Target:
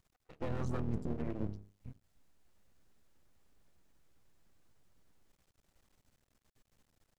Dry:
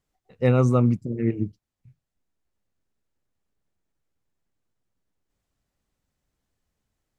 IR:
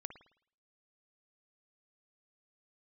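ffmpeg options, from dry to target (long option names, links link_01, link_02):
-filter_complex "[0:a]bandreject=frequency=50:width_type=h:width=6,bandreject=frequency=100:width_type=h:width=6,bandreject=frequency=150:width_type=h:width=6,bandreject=frequency=200:width_type=h:width=6,bandreject=frequency=250:width_type=h:width=6,bandreject=frequency=300:width_type=h:width=6,bandreject=frequency=350:width_type=h:width=6,bandreject=frequency=400:width_type=h:width=6,bandreject=frequency=450:width_type=h:width=6,asplit=3[link_01][link_02][link_03];[link_02]asetrate=22050,aresample=44100,atempo=2,volume=-16dB[link_04];[link_03]asetrate=29433,aresample=44100,atempo=1.49831,volume=-7dB[link_05];[link_01][link_04][link_05]amix=inputs=3:normalize=0,areverse,acompressor=threshold=-29dB:ratio=10,areverse,alimiter=level_in=8.5dB:limit=-24dB:level=0:latency=1:release=248,volume=-8.5dB,aeval=exprs='max(val(0),0)':channel_layout=same,volume=8.5dB"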